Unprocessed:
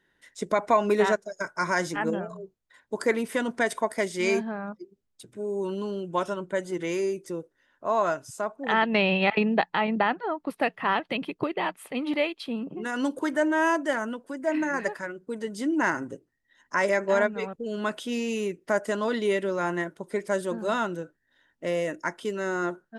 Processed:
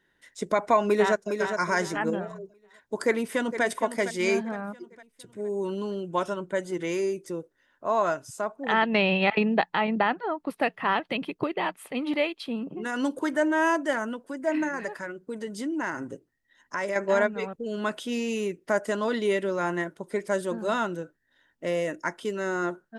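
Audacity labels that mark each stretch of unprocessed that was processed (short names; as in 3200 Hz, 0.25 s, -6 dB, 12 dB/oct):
0.850000	1.300000	echo throw 0.41 s, feedback 30%, level -6.5 dB
3.060000	3.640000	echo throw 0.46 s, feedback 45%, level -11 dB
14.680000	16.960000	compressor 2:1, threshold -30 dBFS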